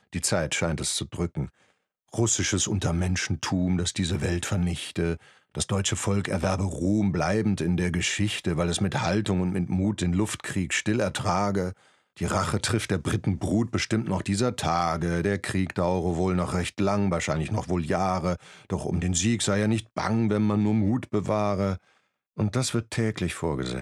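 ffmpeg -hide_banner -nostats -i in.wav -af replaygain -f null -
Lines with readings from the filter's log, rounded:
track_gain = +8.7 dB
track_peak = 0.188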